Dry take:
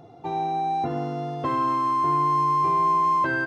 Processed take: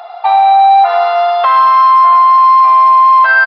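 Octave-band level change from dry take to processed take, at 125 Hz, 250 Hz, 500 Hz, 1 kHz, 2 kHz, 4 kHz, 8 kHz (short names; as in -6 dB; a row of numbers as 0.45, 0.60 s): under -40 dB, under -25 dB, +15.5 dB, +16.5 dB, +18.5 dB, +19.0 dB, n/a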